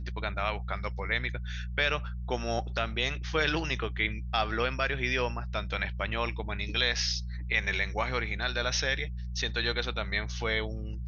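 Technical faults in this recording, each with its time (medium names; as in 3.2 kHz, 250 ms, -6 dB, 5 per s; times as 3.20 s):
hum 60 Hz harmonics 3 -36 dBFS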